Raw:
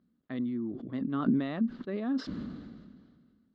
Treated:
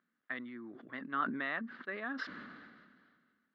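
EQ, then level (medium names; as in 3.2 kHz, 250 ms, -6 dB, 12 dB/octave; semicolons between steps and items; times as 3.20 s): band-pass filter 1.7 kHz, Q 2.6; +11.0 dB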